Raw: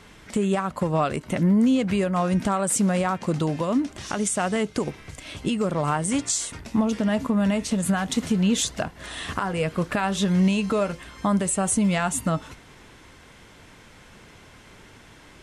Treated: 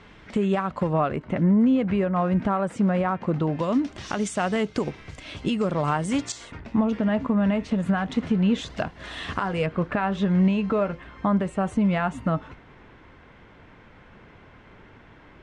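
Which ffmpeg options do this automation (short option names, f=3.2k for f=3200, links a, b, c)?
-af "asetnsamples=n=441:p=0,asendcmd='0.93 lowpass f 2000;3.59 lowpass f 5000;6.32 lowpass f 2400;8.7 lowpass f 4400;9.66 lowpass f 2100',lowpass=3.5k"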